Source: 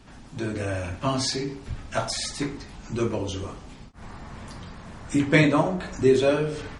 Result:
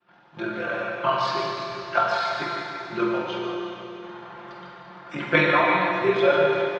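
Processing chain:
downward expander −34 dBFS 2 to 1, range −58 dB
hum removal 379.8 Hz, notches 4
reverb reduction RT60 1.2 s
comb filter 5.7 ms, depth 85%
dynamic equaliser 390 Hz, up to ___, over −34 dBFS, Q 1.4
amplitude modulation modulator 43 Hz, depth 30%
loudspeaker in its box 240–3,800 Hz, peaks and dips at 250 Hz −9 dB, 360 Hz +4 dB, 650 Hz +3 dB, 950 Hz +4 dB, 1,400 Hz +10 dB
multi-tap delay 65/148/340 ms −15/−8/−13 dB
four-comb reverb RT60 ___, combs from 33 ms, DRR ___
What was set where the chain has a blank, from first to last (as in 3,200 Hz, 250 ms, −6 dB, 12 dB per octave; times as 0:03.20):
−5 dB, 3 s, −1 dB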